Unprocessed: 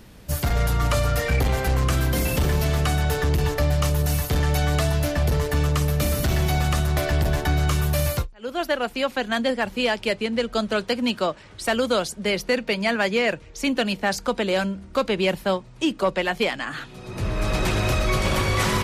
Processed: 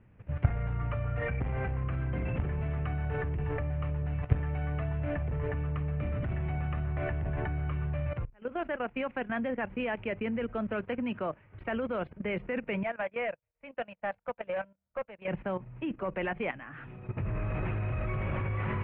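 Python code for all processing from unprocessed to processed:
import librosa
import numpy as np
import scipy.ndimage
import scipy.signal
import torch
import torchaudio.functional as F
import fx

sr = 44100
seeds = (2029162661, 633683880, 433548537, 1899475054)

y = fx.chain(x, sr, fx.low_shelf_res(hz=460.0, db=-6.5, q=3.0),
    fx.clip_hard(threshold_db=-17.0),
    fx.upward_expand(threshold_db=-43.0, expansion=2.5), at=(12.83, 15.28))
y = scipy.signal.sosfilt(scipy.signal.butter(8, 2600.0, 'lowpass', fs=sr, output='sos'), y)
y = fx.peak_eq(y, sr, hz=110.0, db=9.5, octaves=0.94)
y = fx.level_steps(y, sr, step_db=14)
y = y * librosa.db_to_amplitude(-3.5)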